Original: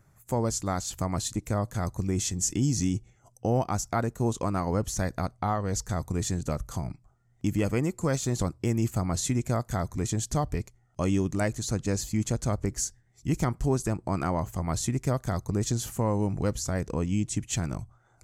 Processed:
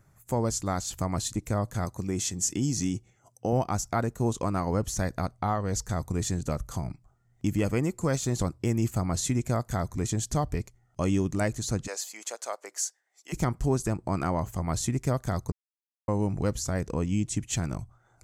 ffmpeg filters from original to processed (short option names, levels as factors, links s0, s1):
-filter_complex "[0:a]asettb=1/sr,asplit=3[s0][s1][s2];[s0]atrim=end=1.854[s3];[s1]atrim=start=1.85:end=3.53,asetpts=PTS-STARTPTS,afade=t=in:d=0.004:c=qsin,afade=t=out:st=1.676:d=0.004:c=qsin,highpass=f=150:p=1[s4];[s2]atrim=start=3.526[s5];[s3][s4]acrossfade=d=0.004:c1=hsin:c2=qsin[s6];[s6][s5]acrossfade=d=0.004:c1=qsin:c2=hsin,asplit=3[s7][s8][s9];[s7]afade=t=out:st=11.86:d=0.02[s10];[s8]highpass=f=550:w=0.5412,highpass=f=550:w=1.3066,afade=t=in:st=11.86:d=0.02,afade=t=out:st=13.32:d=0.02[s11];[s9]afade=t=in:st=13.32:d=0.02[s12];[s10][s11][s12]amix=inputs=3:normalize=0,asplit=3[s13][s14][s15];[s13]atrim=end=15.52,asetpts=PTS-STARTPTS,afade=t=out:st=15.516:d=0.004:c=hsin[s16];[s14]atrim=start=15.52:end=16.08,asetpts=PTS-STARTPTS,volume=0[s17];[s15]atrim=start=16.08,asetpts=PTS-STARTPTS,afade=t=in:d=0.004:c=hsin[s18];[s16][s17][s18]concat=n=3:v=0:a=1"